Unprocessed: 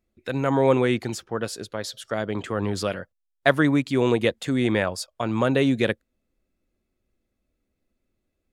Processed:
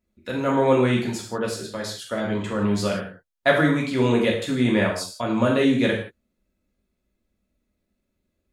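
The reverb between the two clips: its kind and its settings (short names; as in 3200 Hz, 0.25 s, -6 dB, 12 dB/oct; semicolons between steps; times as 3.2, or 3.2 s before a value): non-linear reverb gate 0.2 s falling, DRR -2.5 dB; gain -3 dB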